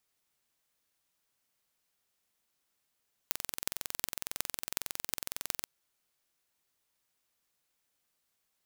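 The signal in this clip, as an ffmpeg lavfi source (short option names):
-f lavfi -i "aevalsrc='0.794*eq(mod(n,2014),0)*(0.5+0.5*eq(mod(n,16112),0))':d=2.34:s=44100"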